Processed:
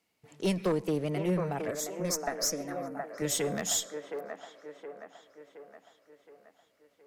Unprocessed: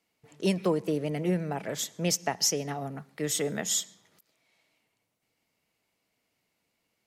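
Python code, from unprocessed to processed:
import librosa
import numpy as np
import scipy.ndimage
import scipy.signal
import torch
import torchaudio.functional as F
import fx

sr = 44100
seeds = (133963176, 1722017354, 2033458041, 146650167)

p1 = fx.diode_clip(x, sr, knee_db=-21.0)
p2 = fx.fixed_phaser(p1, sr, hz=600.0, stages=8, at=(1.71, 3.22))
p3 = 10.0 ** (-20.0 / 20.0) * (np.abs((p2 / 10.0 ** (-20.0 / 20.0) + 3.0) % 4.0 - 2.0) - 1.0)
y = p3 + fx.echo_wet_bandpass(p3, sr, ms=719, feedback_pct=50, hz=830.0, wet_db=-3, dry=0)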